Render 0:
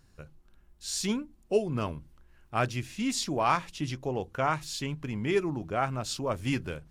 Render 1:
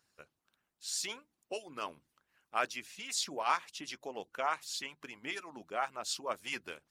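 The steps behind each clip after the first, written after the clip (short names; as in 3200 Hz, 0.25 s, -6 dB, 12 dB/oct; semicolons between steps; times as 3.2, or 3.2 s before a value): harmonic-percussive split harmonic -18 dB; HPF 920 Hz 6 dB/oct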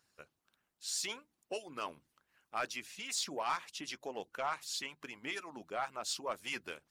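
in parallel at -2 dB: limiter -27.5 dBFS, peak gain reduction 10.5 dB; on the sum: soft clip -20.5 dBFS, distortion -17 dB; gain -4.5 dB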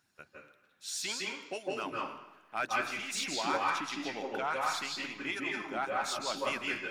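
reverb RT60 1.2 s, pre-delay 0.153 s, DRR -3 dB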